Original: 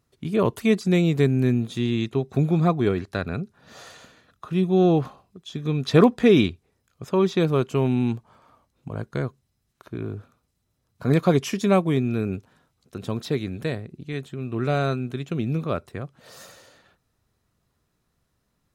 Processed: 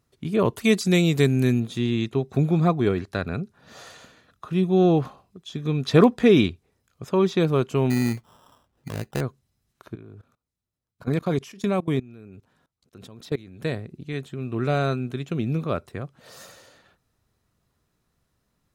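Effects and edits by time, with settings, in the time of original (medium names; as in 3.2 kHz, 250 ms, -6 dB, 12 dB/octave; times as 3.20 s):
0.64–1.60 s: treble shelf 2.9 kHz +10.5 dB
7.90–9.21 s: sample-rate reducer 2.2 kHz
9.95–13.64 s: level held to a coarse grid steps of 22 dB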